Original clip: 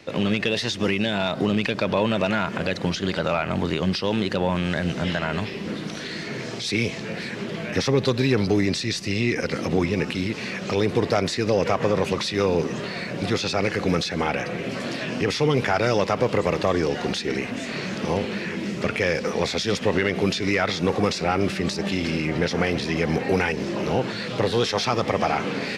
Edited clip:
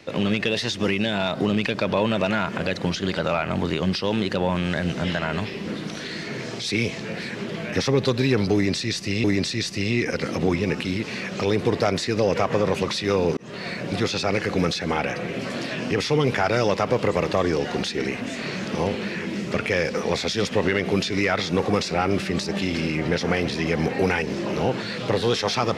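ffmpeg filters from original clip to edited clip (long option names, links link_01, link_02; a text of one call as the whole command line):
ffmpeg -i in.wav -filter_complex "[0:a]asplit=3[link_01][link_02][link_03];[link_01]atrim=end=9.242[link_04];[link_02]atrim=start=8.538:end=12.67,asetpts=PTS-STARTPTS,afade=type=out:start_time=4.128:duration=0.004:curve=hsin[link_05];[link_03]atrim=start=12.67,asetpts=PTS-STARTPTS,afade=type=in:duration=0.29[link_06];[link_05][link_06]concat=n=2:v=0:a=1[link_07];[link_04][link_07]acrossfade=duration=0.004:curve1=hsin:curve2=hsin" out.wav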